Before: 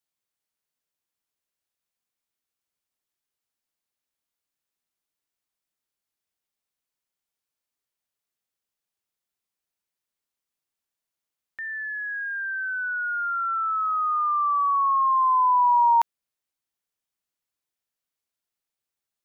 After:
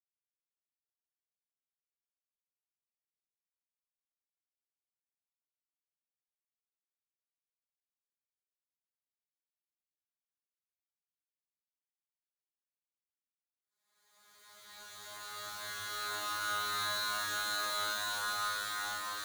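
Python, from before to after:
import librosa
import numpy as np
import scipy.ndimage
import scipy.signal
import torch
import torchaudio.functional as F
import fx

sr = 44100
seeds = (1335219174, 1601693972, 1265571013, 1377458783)

p1 = fx.chord_vocoder(x, sr, chord='bare fifth', root=56)
p2 = scipy.signal.sosfilt(scipy.signal.butter(2, 450.0, 'highpass', fs=sr, output='sos'), p1)
p3 = fx.rev_schroeder(p2, sr, rt60_s=1.9, comb_ms=31, drr_db=-7.0)
p4 = 10.0 ** (-17.5 / 20.0) * np.tanh(p3 / 10.0 ** (-17.5 / 20.0))
p5 = p3 + (p4 * librosa.db_to_amplitude(-7.5))
p6 = fx.fixed_phaser(p5, sr, hz=800.0, stages=4)
p7 = np.where(np.abs(p6) >= 10.0 ** (-27.5 / 20.0), p6, 0.0)
y = fx.paulstretch(p7, sr, seeds[0], factor=8.5, window_s=0.5, from_s=10.88)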